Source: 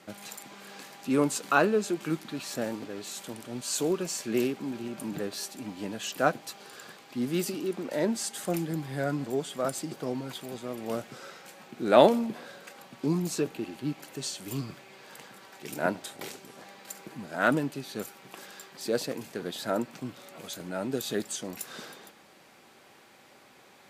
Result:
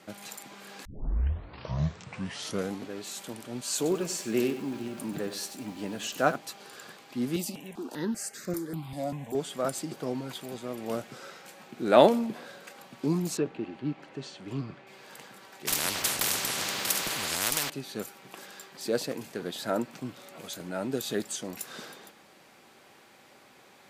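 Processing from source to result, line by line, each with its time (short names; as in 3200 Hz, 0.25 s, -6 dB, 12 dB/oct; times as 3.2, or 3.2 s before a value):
0.85 tape start 2.09 s
3.76–6.36 lo-fi delay 95 ms, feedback 35%, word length 8-bit, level -11 dB
7.36–9.35 step phaser 5.1 Hz 410–3100 Hz
13.37–14.87 Bessel low-pass 2400 Hz
15.67–17.7 spectral compressor 10:1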